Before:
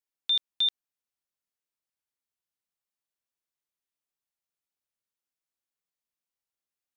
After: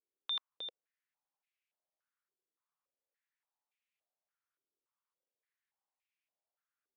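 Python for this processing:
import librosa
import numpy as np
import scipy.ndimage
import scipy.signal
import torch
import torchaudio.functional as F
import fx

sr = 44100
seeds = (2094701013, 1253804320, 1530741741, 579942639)

y = fx.filter_held_bandpass(x, sr, hz=3.5, low_hz=390.0, high_hz=2400.0)
y = y * librosa.db_to_amplitude(10.5)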